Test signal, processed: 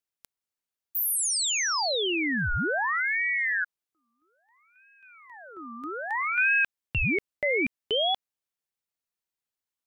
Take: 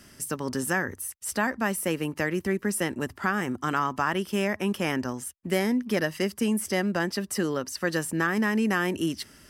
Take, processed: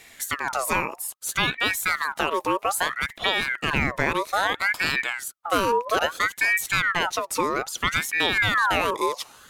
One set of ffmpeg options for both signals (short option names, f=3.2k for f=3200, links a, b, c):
-af "acontrast=49,aeval=exprs='val(0)*sin(2*PI*1400*n/s+1400*0.5/0.61*sin(2*PI*0.61*n/s))':c=same"